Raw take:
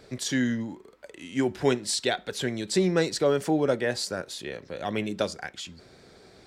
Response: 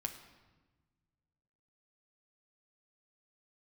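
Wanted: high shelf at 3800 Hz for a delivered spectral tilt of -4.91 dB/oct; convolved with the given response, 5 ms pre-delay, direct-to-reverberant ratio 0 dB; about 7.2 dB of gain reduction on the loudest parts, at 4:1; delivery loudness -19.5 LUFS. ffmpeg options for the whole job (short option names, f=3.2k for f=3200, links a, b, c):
-filter_complex "[0:a]highshelf=f=3.8k:g=-9,acompressor=threshold=-27dB:ratio=4,asplit=2[a][b];[1:a]atrim=start_sample=2205,adelay=5[c];[b][c]afir=irnorm=-1:irlink=0,volume=0.5dB[d];[a][d]amix=inputs=2:normalize=0,volume=10.5dB"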